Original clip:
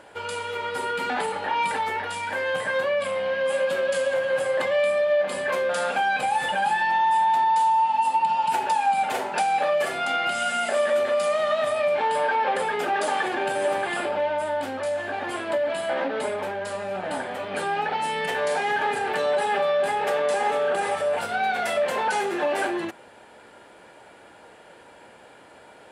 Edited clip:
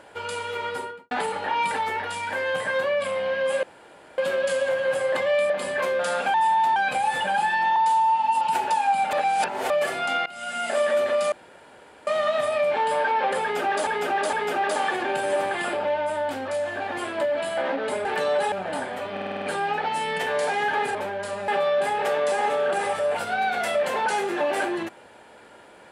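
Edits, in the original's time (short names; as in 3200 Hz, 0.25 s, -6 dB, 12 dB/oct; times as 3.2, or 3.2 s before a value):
0.67–1.11 studio fade out
3.63 insert room tone 0.55 s
4.95–5.2 cut
7.04–7.46 move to 6.04
8.11–8.4 cut
9.12–9.69 reverse
10.25–10.76 fade in, from -21 dB
11.31 insert room tone 0.75 s
12.65–13.11 loop, 3 plays
16.37–16.9 swap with 19.03–19.5
17.5 stutter 0.05 s, 7 plays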